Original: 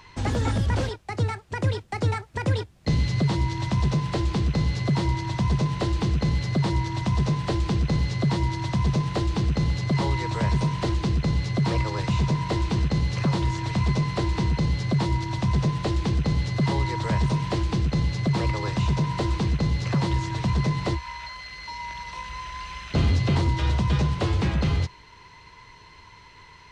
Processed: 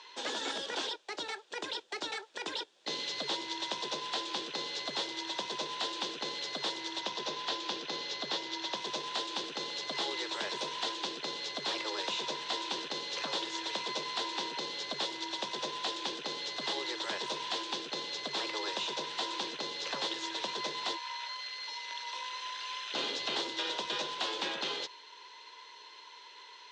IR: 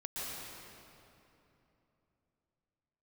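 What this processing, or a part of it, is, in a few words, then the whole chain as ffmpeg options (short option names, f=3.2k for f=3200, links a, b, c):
phone speaker on a table: -filter_complex "[0:a]highpass=f=430:w=0.5412,highpass=f=430:w=1.3066,equalizer=f=700:t=q:w=4:g=-8,equalizer=f=1.2k:t=q:w=4:g=-7,equalizer=f=2.1k:t=q:w=4:g=-7,equalizer=f=3.5k:t=q:w=4:g=8,lowpass=f=7.5k:w=0.5412,lowpass=f=7.5k:w=1.3066,asettb=1/sr,asplit=3[a][b][c];[a]atrim=end=7.004[d];[b]atrim=start=7:end=8.77,asetpts=PTS-STARTPTS,afade=t=in:d=0.004:c=qsin,afade=t=out:st=1.766:d=0.004:c=qsin,lowpass=f=6.9k:w=0.5412,lowpass=f=6.9k:w=1.3066[e];[c]atrim=start=8.766[f];[d][e]acrossfade=d=0.004:c1=hsin:c2=qsin[g];[g][f]acrossfade=d=0.004:c1=qsin:c2=hsin,afftfilt=real='re*lt(hypot(re,im),0.112)':imag='im*lt(hypot(re,im),0.112)':win_size=1024:overlap=0.75"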